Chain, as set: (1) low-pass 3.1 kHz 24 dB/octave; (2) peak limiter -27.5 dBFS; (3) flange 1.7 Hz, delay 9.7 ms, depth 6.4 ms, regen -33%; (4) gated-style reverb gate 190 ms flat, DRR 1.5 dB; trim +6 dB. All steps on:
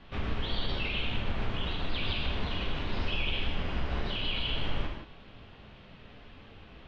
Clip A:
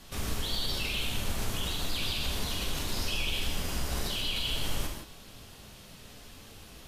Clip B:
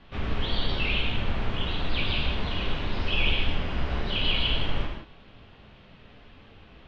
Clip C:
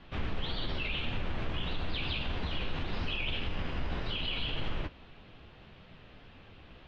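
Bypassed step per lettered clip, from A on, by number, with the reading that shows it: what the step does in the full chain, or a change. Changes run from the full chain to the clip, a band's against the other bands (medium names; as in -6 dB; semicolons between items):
1, 4 kHz band +4.0 dB; 2, mean gain reduction 3.0 dB; 4, loudness change -2.5 LU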